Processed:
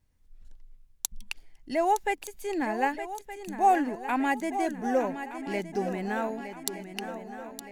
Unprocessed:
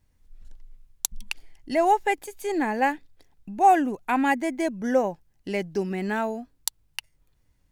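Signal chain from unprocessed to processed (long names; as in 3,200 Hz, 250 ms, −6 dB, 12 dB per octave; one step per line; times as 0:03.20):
feedback echo with a long and a short gap by turns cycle 1,219 ms, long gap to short 3 to 1, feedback 49%, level −10.5 dB
level −4.5 dB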